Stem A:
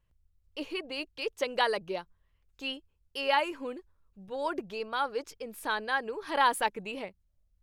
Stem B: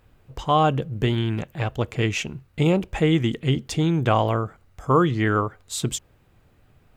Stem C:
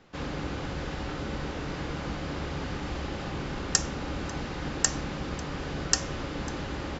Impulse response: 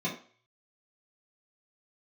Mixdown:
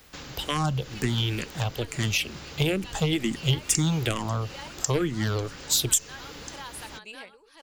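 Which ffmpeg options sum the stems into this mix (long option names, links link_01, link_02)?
-filter_complex "[0:a]lowpass=9400,adelay=200,volume=-9dB,asplit=2[link_01][link_02];[link_02]volume=-12.5dB[link_03];[1:a]aeval=exprs='0.473*(cos(1*acos(clip(val(0)/0.473,-1,1)))-cos(1*PI/2))+0.0596*(cos(3*acos(clip(val(0)/0.473,-1,1)))-cos(3*PI/2))+0.0668*(cos(4*acos(clip(val(0)/0.473,-1,1)))-cos(4*PI/2))+0.0473*(cos(6*acos(clip(val(0)/0.473,-1,1)))-cos(6*PI/2))':channel_layout=same,asplit=2[link_04][link_05];[link_05]afreqshift=-2.2[link_06];[link_04][link_06]amix=inputs=2:normalize=1,volume=2.5dB[link_07];[2:a]volume=-3dB[link_08];[link_01][link_08]amix=inputs=2:normalize=0,acompressor=threshold=-43dB:ratio=4,volume=0dB[link_09];[link_03]aecho=0:1:1053|2106|3159|4212:1|0.25|0.0625|0.0156[link_10];[link_07][link_09][link_10]amix=inputs=3:normalize=0,acrossover=split=300[link_11][link_12];[link_12]acompressor=threshold=-34dB:ratio=3[link_13];[link_11][link_13]amix=inputs=2:normalize=0,crystalizer=i=6.5:c=0"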